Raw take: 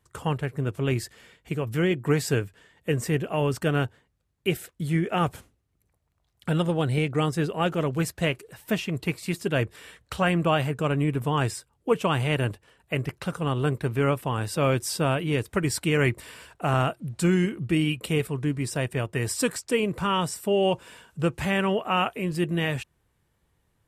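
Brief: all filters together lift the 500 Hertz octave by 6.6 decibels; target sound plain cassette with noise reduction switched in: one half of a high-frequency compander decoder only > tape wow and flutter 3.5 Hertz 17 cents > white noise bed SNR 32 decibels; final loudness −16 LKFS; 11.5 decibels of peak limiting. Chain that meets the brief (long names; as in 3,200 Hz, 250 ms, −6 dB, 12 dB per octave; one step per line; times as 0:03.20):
parametric band 500 Hz +8 dB
brickwall limiter −16.5 dBFS
one half of a high-frequency compander decoder only
tape wow and flutter 3.5 Hz 17 cents
white noise bed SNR 32 dB
level +11.5 dB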